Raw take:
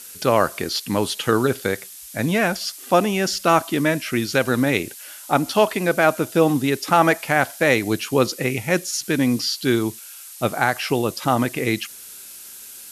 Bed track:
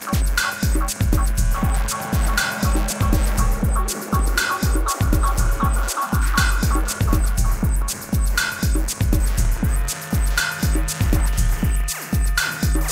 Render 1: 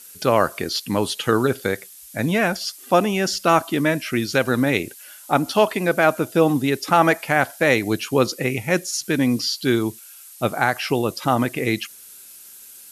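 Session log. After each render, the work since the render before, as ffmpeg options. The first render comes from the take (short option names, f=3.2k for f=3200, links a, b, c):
-af "afftdn=nr=6:nf=-40"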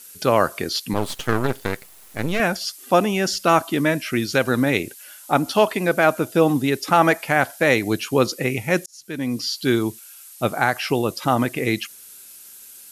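-filter_complex "[0:a]asettb=1/sr,asplit=3[a][b][c];[a]atrim=end=0.934[d];[b]atrim=start=0.93:end=2.4,asetpts=PTS-STARTPTS,afade=t=in:d=0.004:c=qsin,afade=t=out:st=1.466:d=0.004:c=qsin,aeval=exprs='max(val(0),0)':c=same[e];[c]atrim=start=2.396[f];[d][e]acrossfade=d=0.004:c1=hsin:c2=qsin[g];[g][f]acrossfade=d=0.004:c1=qsin:c2=hsin,asplit=2[h][i];[h]atrim=end=8.86,asetpts=PTS-STARTPTS,afade=t=out:st=8.856:d=0.004:c=hsin[j];[i]atrim=start=8.86,asetpts=PTS-STARTPTS,afade=t=in:d=0.79[k];[j][k]concat=n=2:v=0:a=1"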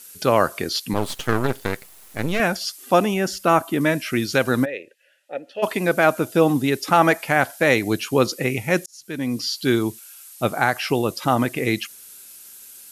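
-filter_complex "[0:a]asettb=1/sr,asplit=3[a][b][c];[a]atrim=end=3.144[d];[b]atrim=start=3.14:end=3.81,asetpts=PTS-STARTPTS,afade=t=in:d=0.004:c=qsin,afade=t=out:st=0.666:d=0.004:c=qsin,equalizer=f=4.5k:w=0.8:g=-7[e];[c]atrim=start=3.806[f];[d][e]acrossfade=d=0.004:c1=hsin:c2=qsin[g];[g][f]acrossfade=d=0.004:c1=qsin:c2=hsin,asplit=3[h][i][j];[h]afade=t=out:st=4.64:d=0.02[k];[i]asplit=3[l][m][n];[l]bandpass=f=530:t=q:w=8,volume=0dB[o];[m]bandpass=f=1.84k:t=q:w=8,volume=-6dB[p];[n]bandpass=f=2.48k:t=q:w=8,volume=-9dB[q];[o][p][q]amix=inputs=3:normalize=0,afade=t=in:st=4.64:d=0.02,afade=t=out:st=5.62:d=0.02[r];[j]afade=t=in:st=5.62:d=0.02[s];[k][r][s]amix=inputs=3:normalize=0"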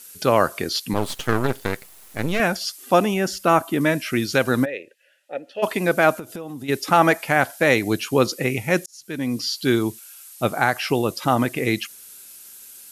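-filter_complex "[0:a]asplit=3[a][b][c];[a]afade=t=out:st=6.18:d=0.02[d];[b]acompressor=threshold=-30dB:ratio=8:attack=3.2:release=140:knee=1:detection=peak,afade=t=in:st=6.18:d=0.02,afade=t=out:st=6.68:d=0.02[e];[c]afade=t=in:st=6.68:d=0.02[f];[d][e][f]amix=inputs=3:normalize=0"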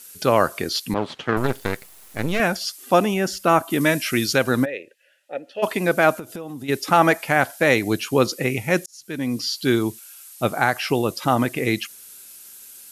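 -filter_complex "[0:a]asettb=1/sr,asplit=3[a][b][c];[a]atrim=end=0.944[d];[b]atrim=start=0.94:end=1.37,asetpts=PTS-STARTPTS,afade=t=in:d=0.004:c=qsin,afade=t=out:st=0.426:d=0.004:c=qsin,highpass=130,lowpass=3.3k[e];[c]atrim=start=1.366[f];[d][e]acrossfade=d=0.004:c1=hsin:c2=qsin[g];[g][f]acrossfade=d=0.004:c1=qsin:c2=hsin,asettb=1/sr,asplit=3[h][i][j];[h]atrim=end=3.704[k];[i]atrim=start=3.7:end=4.33,asetpts=PTS-STARTPTS,afade=t=in:d=0.004:c=qsin,afade=t=out:st=0.626:d=0.004:c=qsin,highshelf=f=2.7k:g=7.5[l];[j]atrim=start=4.326[m];[k][l]acrossfade=d=0.004:c1=hsin:c2=qsin[n];[n][m]acrossfade=d=0.004:c1=qsin:c2=hsin"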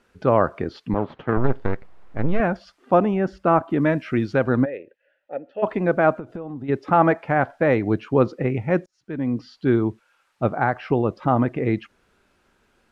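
-af "lowpass=1.3k,lowshelf=f=72:g=11"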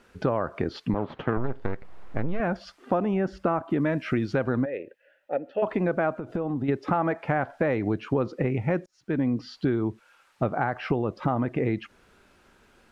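-filter_complex "[0:a]asplit=2[a][b];[b]alimiter=limit=-15dB:level=0:latency=1:release=20,volume=-3dB[c];[a][c]amix=inputs=2:normalize=0,acompressor=threshold=-22dB:ratio=6"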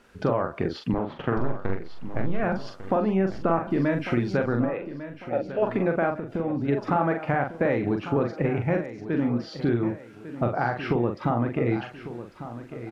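-filter_complex "[0:a]asplit=2[a][b];[b]adelay=42,volume=-5dB[c];[a][c]amix=inputs=2:normalize=0,aecho=1:1:1149|2298|3447|4596:0.224|0.0851|0.0323|0.0123"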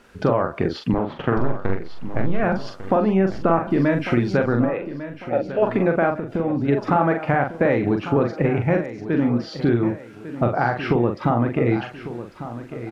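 -af "volume=5dB"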